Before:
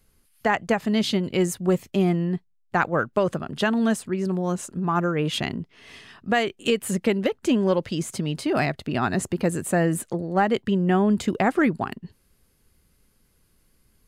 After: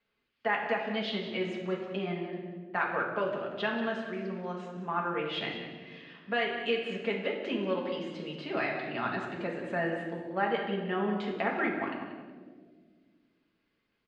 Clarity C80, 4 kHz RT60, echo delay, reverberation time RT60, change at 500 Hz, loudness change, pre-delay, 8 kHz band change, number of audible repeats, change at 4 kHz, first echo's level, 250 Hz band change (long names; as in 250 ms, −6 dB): 5.0 dB, 1.0 s, 185 ms, 1.7 s, −8.0 dB, −9.0 dB, 4 ms, below −30 dB, 1, −6.5 dB, −10.5 dB, −12.5 dB